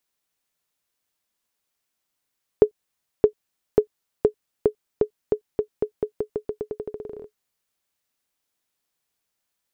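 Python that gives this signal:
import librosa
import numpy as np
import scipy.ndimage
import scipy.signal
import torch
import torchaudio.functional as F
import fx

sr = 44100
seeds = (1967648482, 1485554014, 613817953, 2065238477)

y = fx.bouncing_ball(sr, first_gap_s=0.62, ratio=0.87, hz=424.0, decay_ms=92.0, level_db=-2.5)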